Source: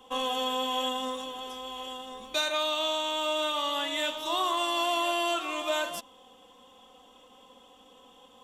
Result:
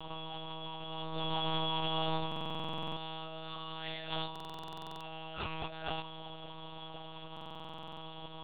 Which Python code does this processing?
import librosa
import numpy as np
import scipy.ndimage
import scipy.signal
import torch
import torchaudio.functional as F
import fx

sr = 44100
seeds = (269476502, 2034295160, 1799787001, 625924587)

y = fx.over_compress(x, sr, threshold_db=-41.0, ratio=-1.0)
y = fx.lpc_monotone(y, sr, seeds[0], pitch_hz=160.0, order=8)
y = fx.buffer_glitch(y, sr, at_s=(2.27, 4.31, 7.32), block=2048, repeats=14)
y = y * 10.0 ** (1.0 / 20.0)